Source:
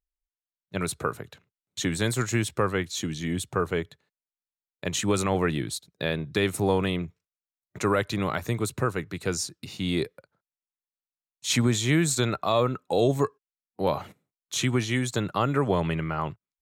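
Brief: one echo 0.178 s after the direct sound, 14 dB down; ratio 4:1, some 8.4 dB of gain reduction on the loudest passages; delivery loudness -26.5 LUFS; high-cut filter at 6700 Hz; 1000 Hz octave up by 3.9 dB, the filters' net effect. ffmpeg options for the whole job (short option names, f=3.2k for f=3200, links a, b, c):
-af "lowpass=6.7k,equalizer=f=1k:t=o:g=5,acompressor=threshold=-27dB:ratio=4,aecho=1:1:178:0.2,volume=5.5dB"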